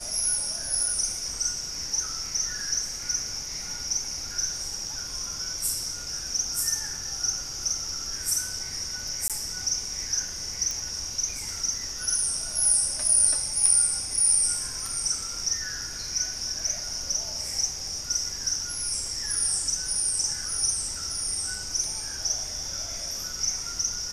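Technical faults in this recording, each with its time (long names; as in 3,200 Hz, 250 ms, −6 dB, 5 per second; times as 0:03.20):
0:09.28–0:09.30: drop-out 17 ms
0:10.71: click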